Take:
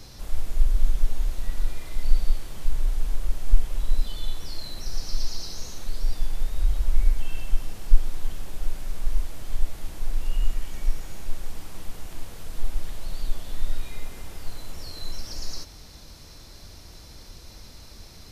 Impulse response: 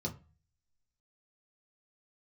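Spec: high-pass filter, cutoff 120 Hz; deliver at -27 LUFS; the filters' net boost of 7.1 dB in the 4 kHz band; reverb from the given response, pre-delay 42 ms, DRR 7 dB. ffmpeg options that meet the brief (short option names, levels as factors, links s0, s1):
-filter_complex "[0:a]highpass=120,equalizer=f=4000:t=o:g=8.5,asplit=2[s0][s1];[1:a]atrim=start_sample=2205,adelay=42[s2];[s1][s2]afir=irnorm=-1:irlink=0,volume=0.376[s3];[s0][s3]amix=inputs=2:normalize=0,volume=2.99"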